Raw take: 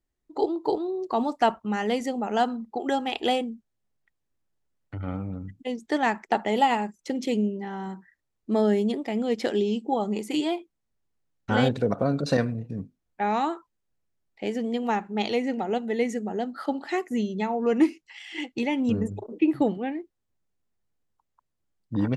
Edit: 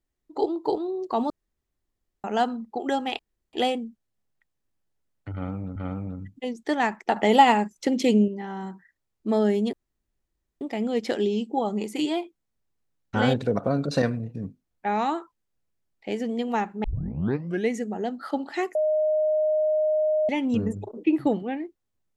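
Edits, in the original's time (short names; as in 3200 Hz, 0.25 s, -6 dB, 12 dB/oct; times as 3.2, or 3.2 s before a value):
1.3–2.24 room tone
3.19 insert room tone 0.34 s
4.99–5.42 loop, 2 plays
6.39–7.51 gain +5.5 dB
8.96 insert room tone 0.88 s
15.19 tape start 0.86 s
17.1–18.64 bleep 617 Hz -19.5 dBFS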